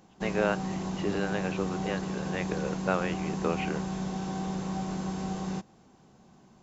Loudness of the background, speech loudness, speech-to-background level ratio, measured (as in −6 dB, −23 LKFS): −34.0 LKFS, −33.5 LKFS, 0.5 dB